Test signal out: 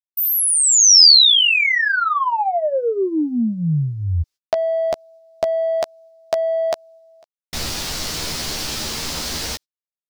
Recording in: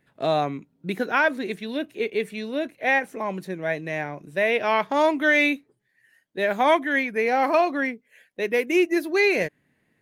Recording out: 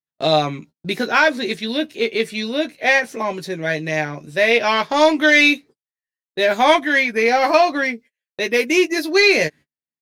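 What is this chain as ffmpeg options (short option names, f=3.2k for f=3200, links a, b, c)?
-filter_complex "[0:a]asplit=2[a][b];[b]asoftclip=type=tanh:threshold=-19dB,volume=-10dB[c];[a][c]amix=inputs=2:normalize=0,agate=range=-42dB:threshold=-43dB:ratio=16:detection=peak,equalizer=f=4.9k:t=o:w=1.2:g=12,asplit=2[d][e];[e]adelay=13,volume=-5dB[f];[d][f]amix=inputs=2:normalize=0,volume=2dB"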